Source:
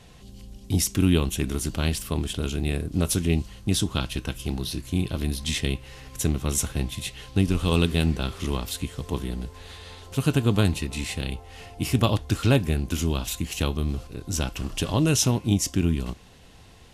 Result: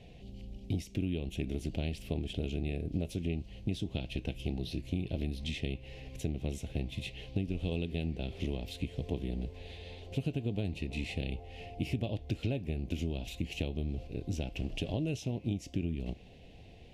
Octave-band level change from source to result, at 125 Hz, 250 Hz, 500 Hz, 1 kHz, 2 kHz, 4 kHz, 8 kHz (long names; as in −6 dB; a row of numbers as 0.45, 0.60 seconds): −10.5, −10.5, −10.0, −16.5, −11.5, −13.5, −24.0 decibels